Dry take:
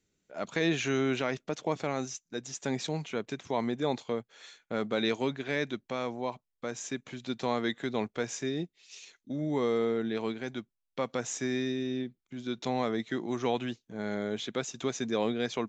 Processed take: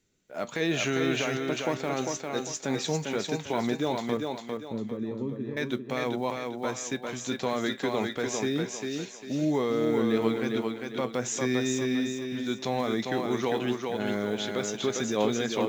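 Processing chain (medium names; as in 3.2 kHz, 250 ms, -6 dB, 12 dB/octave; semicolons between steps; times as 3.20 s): block-companded coder 7-bit; peak limiter -22 dBFS, peak gain reduction 6 dB; 4.17–5.57 s: boxcar filter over 60 samples; flange 0.18 Hz, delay 7.9 ms, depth 3 ms, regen +73%; on a send: thinning echo 400 ms, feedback 37%, high-pass 160 Hz, level -3.5 dB; on the sum: trim +8.5 dB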